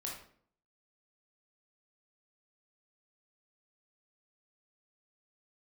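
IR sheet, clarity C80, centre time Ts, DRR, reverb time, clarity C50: 8.0 dB, 39 ms, -2.5 dB, 0.55 s, 3.5 dB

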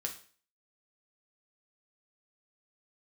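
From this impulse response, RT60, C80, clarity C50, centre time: 0.45 s, 15.0 dB, 10.5 dB, 13 ms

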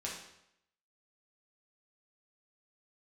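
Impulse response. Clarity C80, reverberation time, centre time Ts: 7.0 dB, 0.80 s, 43 ms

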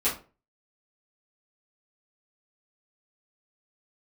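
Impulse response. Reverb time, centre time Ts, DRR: 0.35 s, 26 ms, -11.0 dB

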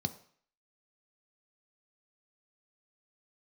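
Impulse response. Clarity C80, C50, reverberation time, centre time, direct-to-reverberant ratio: 18.0 dB, 15.5 dB, 0.55 s, 6 ms, 8.0 dB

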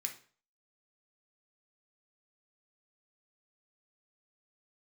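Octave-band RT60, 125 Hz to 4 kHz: 0.45 s, 0.40 s, 0.45 s, 0.40 s, 0.40 s, 0.40 s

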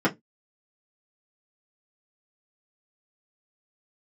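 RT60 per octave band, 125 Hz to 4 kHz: 0.25 s, 0.20 s, 0.15 s, 0.15 s, 0.10 s, 0.10 s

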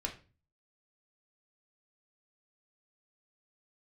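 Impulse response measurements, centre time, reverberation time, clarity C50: 13 ms, 0.35 s, 11.0 dB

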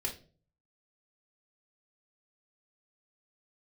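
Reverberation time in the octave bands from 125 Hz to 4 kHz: 0.75 s, 0.55 s, 0.50 s, 0.35 s, 0.30 s, 0.30 s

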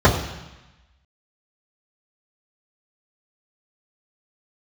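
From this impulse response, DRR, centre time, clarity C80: -9.5 dB, 28 ms, 9.5 dB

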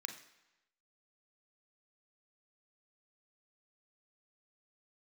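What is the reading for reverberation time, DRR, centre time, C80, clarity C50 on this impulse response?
1.0 s, 5.0 dB, 17 ms, 12.5 dB, 9.0 dB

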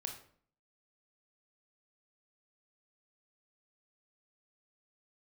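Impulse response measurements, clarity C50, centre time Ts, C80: 7.5 dB, 21 ms, 11.5 dB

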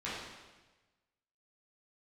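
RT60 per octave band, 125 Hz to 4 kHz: 1.4 s, 1.2 s, 1.2 s, 1.2 s, 1.2 s, 1.1 s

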